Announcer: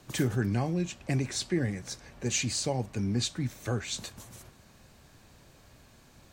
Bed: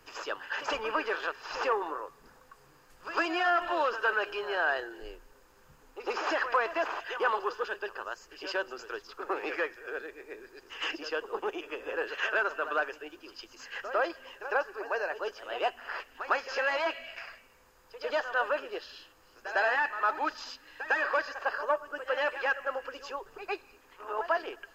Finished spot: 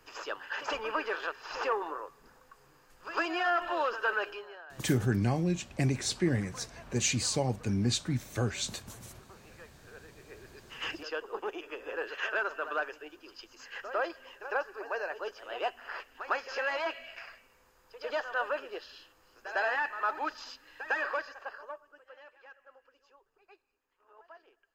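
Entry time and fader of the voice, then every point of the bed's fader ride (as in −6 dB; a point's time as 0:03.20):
4.70 s, +0.5 dB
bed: 0:04.28 −2 dB
0:04.66 −23 dB
0:09.54 −23 dB
0:10.50 −3 dB
0:21.05 −3 dB
0:22.24 −24.5 dB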